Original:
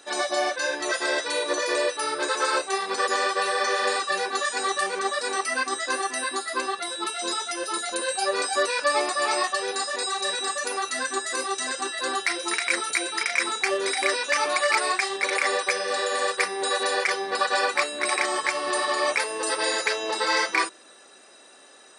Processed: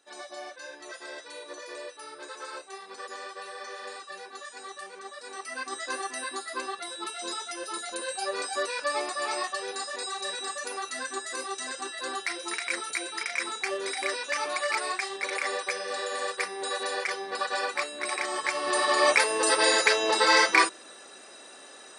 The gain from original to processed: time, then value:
5.16 s -16 dB
5.81 s -6.5 dB
18.22 s -6.5 dB
19.09 s +3 dB

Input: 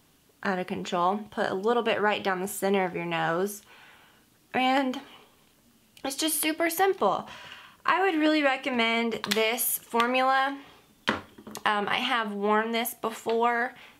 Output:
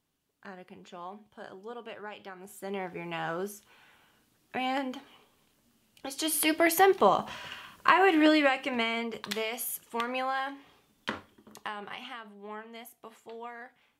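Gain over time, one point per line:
2.36 s -17.5 dB
2.98 s -7 dB
6.09 s -7 dB
6.54 s +2 dB
8.2 s +2 dB
9.14 s -8 dB
11.16 s -8 dB
12.35 s -18 dB

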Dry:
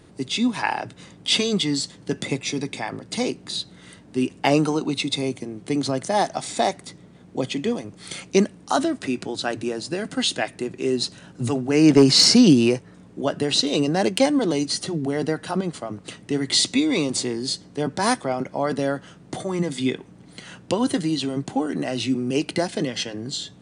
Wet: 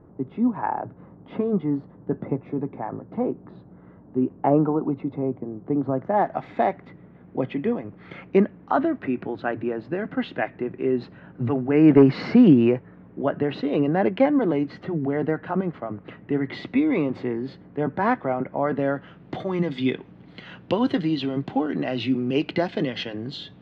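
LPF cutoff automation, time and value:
LPF 24 dB/oct
5.88 s 1200 Hz
6.39 s 2100 Hz
18.65 s 2100 Hz
19.39 s 3400 Hz

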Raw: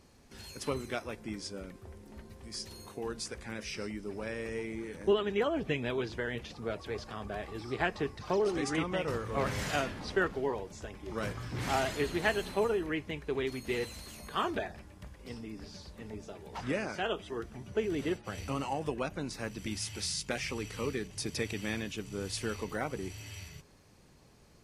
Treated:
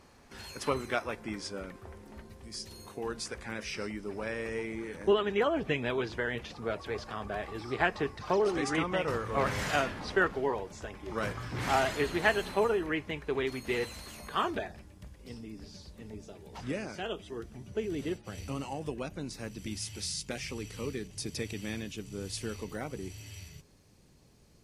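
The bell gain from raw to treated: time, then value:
bell 1200 Hz 2.4 oct
1.97 s +7.5 dB
2.59 s -3 dB
3.14 s +4.5 dB
14.26 s +4.5 dB
14.94 s -6 dB

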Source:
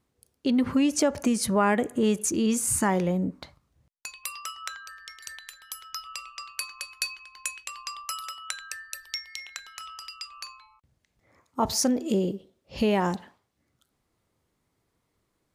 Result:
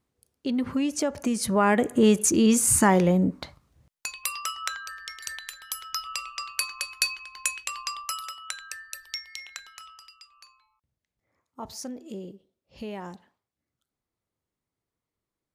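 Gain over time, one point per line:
1.15 s -3.5 dB
2.03 s +5 dB
7.77 s +5 dB
8.37 s -1 dB
9.61 s -1 dB
10.26 s -13 dB

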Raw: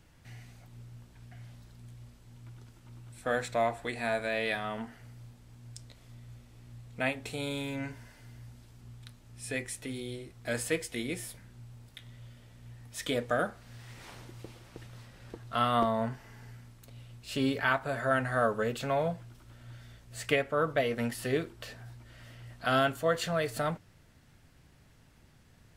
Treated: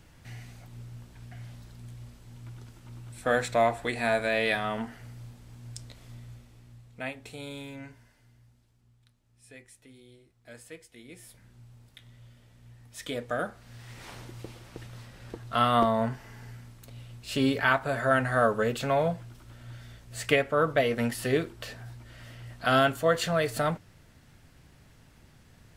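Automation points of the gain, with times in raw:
6.16 s +5 dB
6.96 s -5 dB
7.62 s -5 dB
8.96 s -15 dB
11.01 s -15 dB
11.46 s -3 dB
13.16 s -3 dB
14.12 s +4 dB

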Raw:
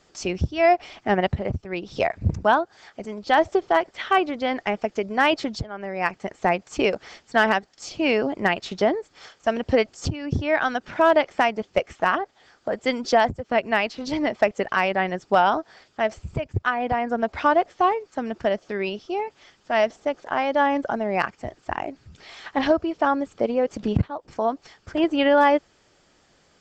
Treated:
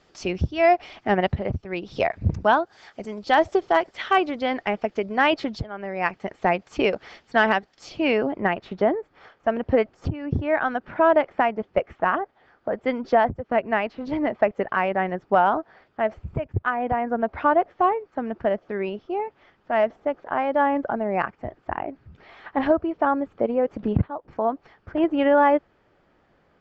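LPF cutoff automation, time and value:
2.23 s 4600 Hz
3 s 7100 Hz
4.21 s 7100 Hz
4.62 s 3900 Hz
7.96 s 3900 Hz
8.47 s 1800 Hz

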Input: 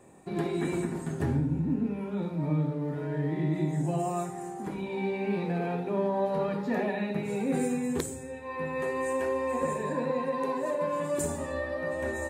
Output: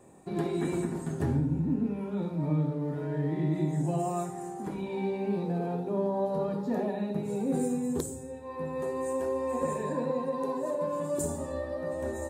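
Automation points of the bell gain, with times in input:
bell 2200 Hz 1.3 oct
4.95 s -4.5 dB
5.46 s -14.5 dB
9.33 s -14.5 dB
9.79 s -4.5 dB
10.25 s -13 dB

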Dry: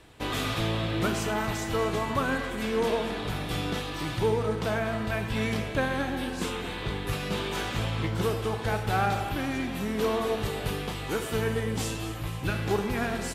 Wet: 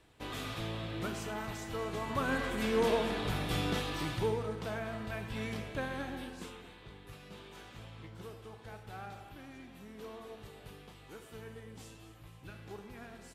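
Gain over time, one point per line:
1.86 s -10.5 dB
2.47 s -2.5 dB
3.93 s -2.5 dB
4.52 s -10 dB
6.14 s -10 dB
6.81 s -20 dB

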